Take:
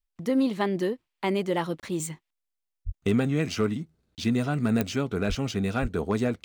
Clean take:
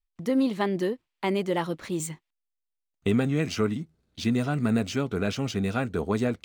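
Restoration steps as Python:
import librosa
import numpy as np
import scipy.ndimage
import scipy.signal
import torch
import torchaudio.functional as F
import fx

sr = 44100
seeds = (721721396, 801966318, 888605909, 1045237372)

y = fx.fix_declip(x, sr, threshold_db=-14.5)
y = fx.fix_declick_ar(y, sr, threshold=10.0)
y = fx.fix_deplosive(y, sr, at_s=(2.85, 5.28, 5.81))
y = fx.fix_interpolate(y, sr, at_s=(1.8, 4.15), length_ms=28.0)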